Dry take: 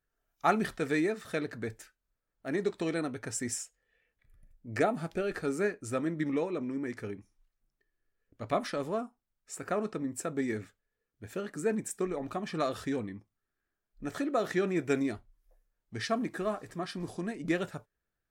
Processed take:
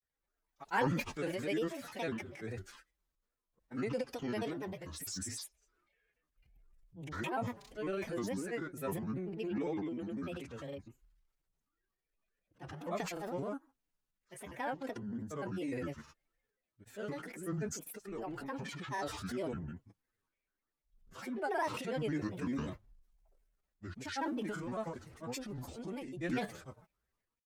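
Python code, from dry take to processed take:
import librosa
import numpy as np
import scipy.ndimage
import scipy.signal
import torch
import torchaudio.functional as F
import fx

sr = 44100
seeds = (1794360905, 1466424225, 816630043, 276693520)

y = fx.stretch_vocoder(x, sr, factor=1.5)
y = fx.granulator(y, sr, seeds[0], grain_ms=100.0, per_s=20.0, spray_ms=100.0, spread_st=7)
y = fx.transient(y, sr, attack_db=-3, sustain_db=7)
y = y * 10.0 ** (-4.5 / 20.0)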